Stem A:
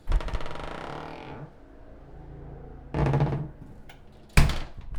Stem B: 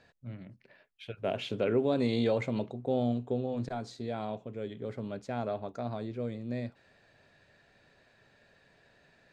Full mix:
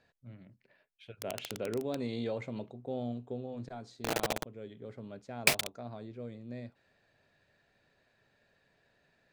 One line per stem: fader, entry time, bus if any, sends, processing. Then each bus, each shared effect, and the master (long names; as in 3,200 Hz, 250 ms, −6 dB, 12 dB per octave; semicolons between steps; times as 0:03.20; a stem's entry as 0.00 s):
+2.0 dB, 1.10 s, no send, high-pass filter 530 Hz 12 dB per octave; flat-topped bell 1,200 Hz −10.5 dB 1.2 octaves; bit reduction 5 bits
−7.5 dB, 0.00 s, no send, no processing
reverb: not used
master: no processing